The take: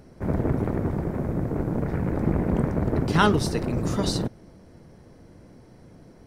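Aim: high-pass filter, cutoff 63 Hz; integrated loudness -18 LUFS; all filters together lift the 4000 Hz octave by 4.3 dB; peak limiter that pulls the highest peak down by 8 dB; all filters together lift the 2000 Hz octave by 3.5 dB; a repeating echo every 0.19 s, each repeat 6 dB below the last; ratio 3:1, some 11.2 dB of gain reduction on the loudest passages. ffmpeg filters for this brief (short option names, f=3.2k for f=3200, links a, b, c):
-af "highpass=63,equalizer=f=2k:t=o:g=4.5,equalizer=f=4k:t=o:g=4,acompressor=threshold=-28dB:ratio=3,alimiter=limit=-22.5dB:level=0:latency=1,aecho=1:1:190|380|570|760|950|1140:0.501|0.251|0.125|0.0626|0.0313|0.0157,volume=14dB"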